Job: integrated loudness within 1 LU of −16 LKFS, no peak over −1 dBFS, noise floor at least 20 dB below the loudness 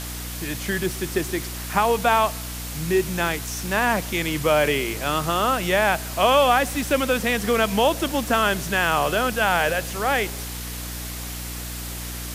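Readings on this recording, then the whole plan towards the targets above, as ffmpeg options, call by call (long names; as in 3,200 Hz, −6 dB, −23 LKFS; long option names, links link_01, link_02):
mains hum 60 Hz; hum harmonics up to 300 Hz; level of the hum −32 dBFS; background noise floor −32 dBFS; target noise floor −43 dBFS; integrated loudness −22.5 LKFS; sample peak −6.0 dBFS; target loudness −16.0 LKFS
→ -af "bandreject=frequency=60:width_type=h:width=6,bandreject=frequency=120:width_type=h:width=6,bandreject=frequency=180:width_type=h:width=6,bandreject=frequency=240:width_type=h:width=6,bandreject=frequency=300:width_type=h:width=6"
-af "afftdn=noise_reduction=11:noise_floor=-32"
-af "volume=6.5dB,alimiter=limit=-1dB:level=0:latency=1"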